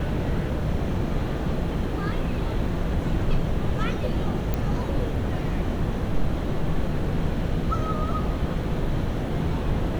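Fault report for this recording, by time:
4.54 s: pop -13 dBFS

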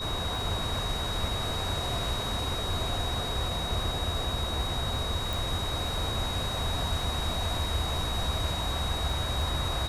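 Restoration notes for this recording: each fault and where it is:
crackle 12 per s -37 dBFS
whine 3.8 kHz -34 dBFS
5.33 s: pop

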